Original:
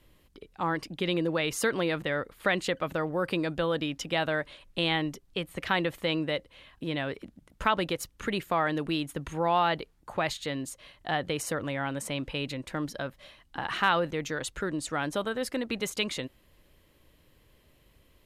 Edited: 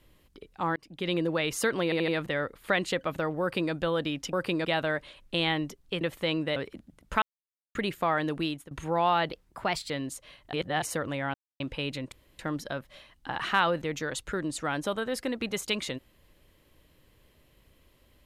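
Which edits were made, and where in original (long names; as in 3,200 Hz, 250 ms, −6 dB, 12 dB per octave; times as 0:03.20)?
0:00.76–0:01.13: fade in
0:01.84: stutter 0.08 s, 4 plays
0:03.17–0:03.49: duplicate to 0:04.09
0:05.45–0:05.82: remove
0:06.37–0:07.05: remove
0:07.71–0:08.24: silence
0:08.84–0:09.20: fade out equal-power, to −21.5 dB
0:09.81–0:10.46: play speed 112%
0:11.09–0:11.38: reverse
0:11.90–0:12.16: silence
0:12.68: splice in room tone 0.27 s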